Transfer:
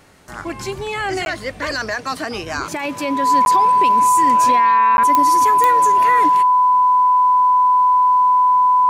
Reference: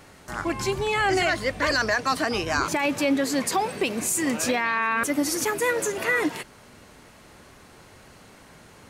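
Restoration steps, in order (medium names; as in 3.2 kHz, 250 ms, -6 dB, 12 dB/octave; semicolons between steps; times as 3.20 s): de-click; band-stop 1 kHz, Q 30; interpolate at 1.25/3.45/4.97 s, 11 ms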